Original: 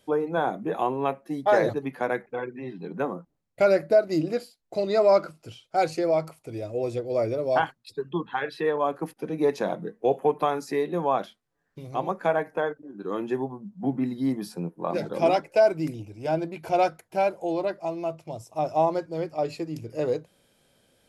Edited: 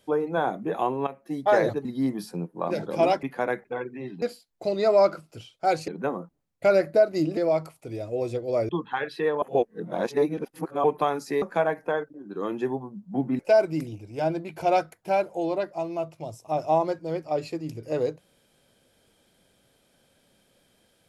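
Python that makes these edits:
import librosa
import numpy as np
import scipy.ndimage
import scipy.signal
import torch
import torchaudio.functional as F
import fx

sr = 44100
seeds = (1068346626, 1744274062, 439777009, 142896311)

y = fx.edit(x, sr, fx.fade_in_from(start_s=1.07, length_s=0.26, floor_db=-14.5),
    fx.move(start_s=2.84, length_s=1.49, to_s=5.99),
    fx.cut(start_s=7.31, length_s=0.79),
    fx.reverse_span(start_s=8.83, length_s=1.42),
    fx.cut(start_s=10.83, length_s=1.28),
    fx.move(start_s=14.08, length_s=1.38, to_s=1.85), tone=tone)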